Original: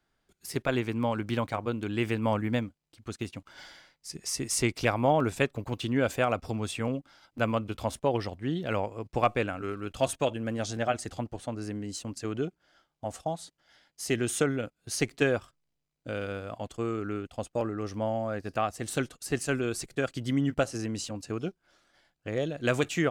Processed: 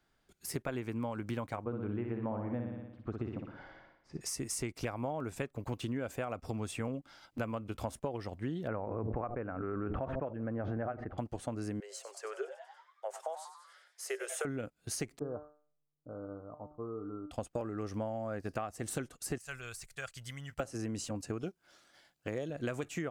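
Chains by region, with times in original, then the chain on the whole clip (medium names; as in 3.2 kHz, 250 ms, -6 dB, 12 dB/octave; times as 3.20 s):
1.64–4.21 s: low-pass 1.2 kHz + flutter echo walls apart 10 m, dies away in 0.67 s
8.67–11.18 s: low-pass 1.7 kHz 24 dB/octave + feedback echo behind a low-pass 72 ms, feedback 48%, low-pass 450 Hz, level -18 dB + swell ahead of each attack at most 31 dB/s
11.80–14.45 s: rippled Chebyshev high-pass 380 Hz, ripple 6 dB + frequency-shifting echo 95 ms, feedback 57%, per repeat +130 Hz, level -12 dB
15.19–17.31 s: steep low-pass 1.3 kHz 72 dB/octave + feedback comb 150 Hz, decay 0.45 s, mix 80%
19.38–20.60 s: de-esser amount 85% + amplifier tone stack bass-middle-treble 10-0-10
21.43–22.50 s: high-pass 100 Hz 6 dB/octave + treble shelf 4.8 kHz +5.5 dB
whole clip: compression 10:1, threshold -34 dBFS; dynamic bell 3.7 kHz, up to -7 dB, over -59 dBFS, Q 1.1; trim +1 dB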